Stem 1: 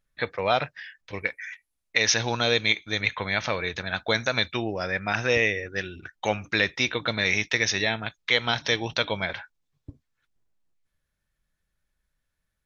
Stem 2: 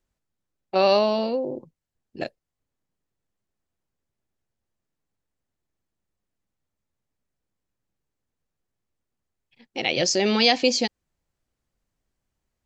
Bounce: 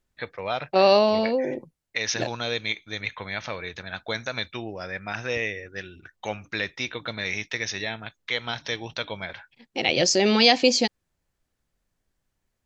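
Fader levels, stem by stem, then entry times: -5.5, +1.5 dB; 0.00, 0.00 s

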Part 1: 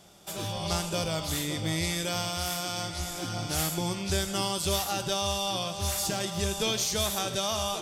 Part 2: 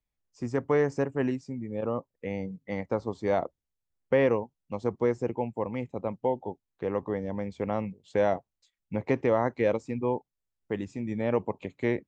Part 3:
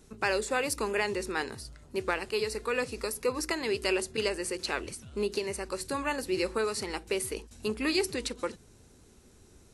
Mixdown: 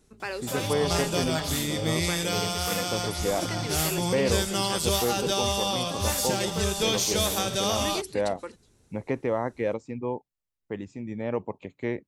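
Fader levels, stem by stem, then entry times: +2.5, -2.5, -5.5 dB; 0.20, 0.00, 0.00 s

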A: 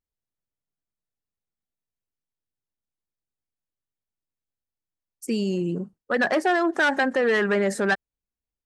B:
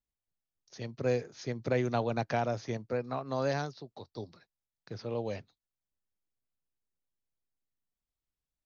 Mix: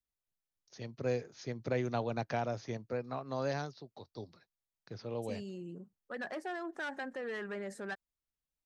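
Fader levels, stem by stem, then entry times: -18.5, -4.0 dB; 0.00, 0.00 s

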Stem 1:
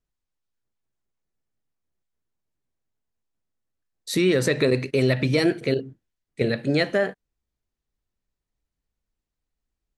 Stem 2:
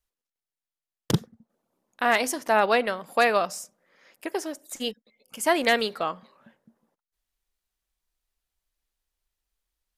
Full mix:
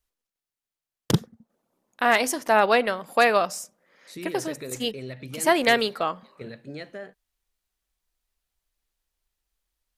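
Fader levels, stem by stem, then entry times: -16.5, +2.0 dB; 0.00, 0.00 s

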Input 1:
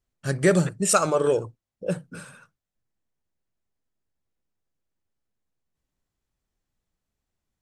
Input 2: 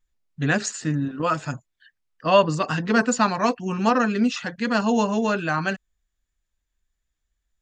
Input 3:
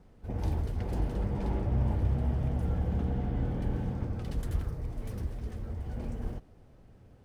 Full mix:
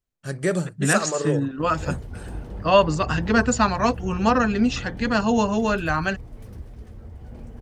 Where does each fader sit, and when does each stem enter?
-4.0, +0.5, -3.0 dB; 0.00, 0.40, 1.35 s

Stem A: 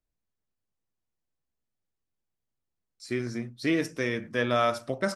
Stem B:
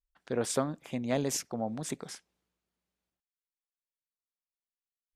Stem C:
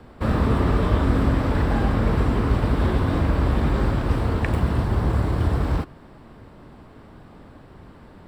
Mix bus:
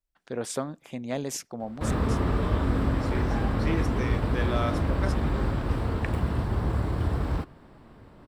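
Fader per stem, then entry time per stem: -6.0, -1.0, -5.5 dB; 0.00, 0.00, 1.60 s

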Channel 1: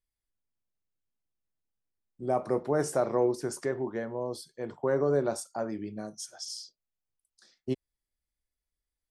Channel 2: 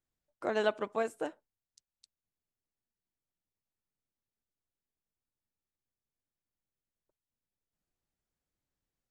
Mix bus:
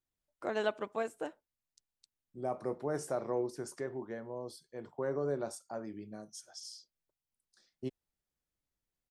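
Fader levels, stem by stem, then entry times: -8.0, -3.0 dB; 0.15, 0.00 s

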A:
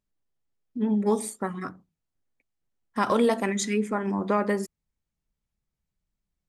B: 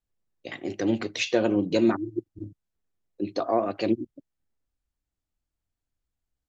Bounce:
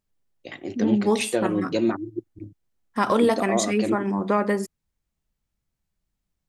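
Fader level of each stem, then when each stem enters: +2.5, -1.0 dB; 0.00, 0.00 s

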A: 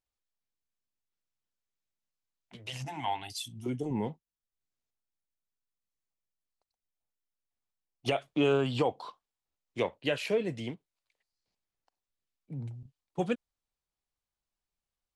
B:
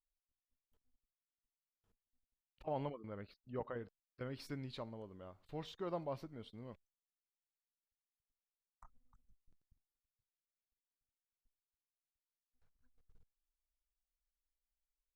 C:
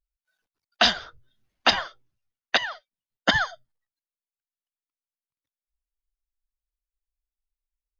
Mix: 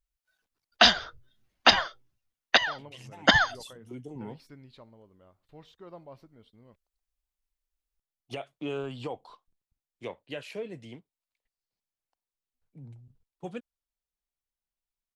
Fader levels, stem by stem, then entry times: -8.0, -5.5, +1.0 dB; 0.25, 0.00, 0.00 s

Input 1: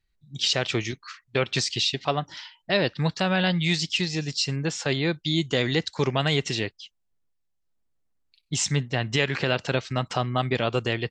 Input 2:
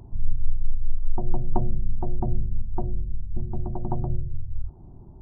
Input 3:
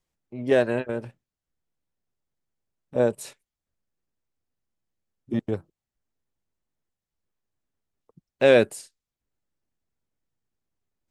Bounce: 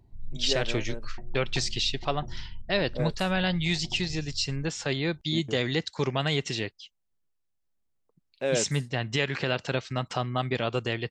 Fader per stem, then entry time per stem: -3.5, -15.0, -11.0 dB; 0.00, 0.00, 0.00 s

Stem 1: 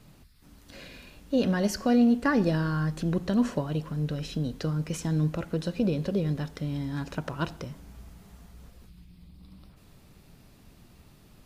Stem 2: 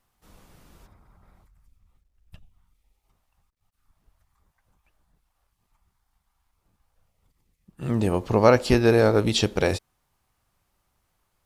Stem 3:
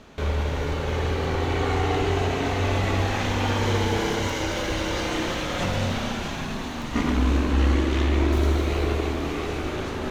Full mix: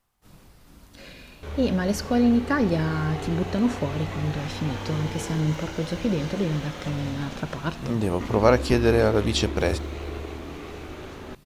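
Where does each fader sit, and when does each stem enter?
+1.5, -1.5, -9.5 dB; 0.25, 0.00, 1.25 s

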